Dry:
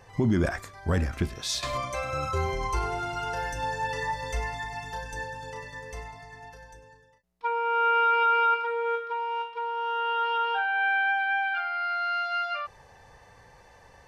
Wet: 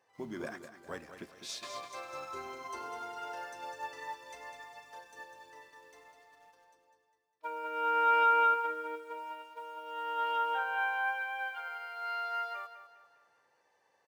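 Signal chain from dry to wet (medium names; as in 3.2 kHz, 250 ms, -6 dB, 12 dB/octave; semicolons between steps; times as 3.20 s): high-pass 340 Hz 12 dB/octave; in parallel at -11 dB: bit crusher 7-bit; on the sum: harmony voices -7 st -13 dB; on a send: feedback delay 202 ms, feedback 45%, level -7.5 dB; on the sum: upward expansion 1.5:1, over -36 dBFS; trim -8 dB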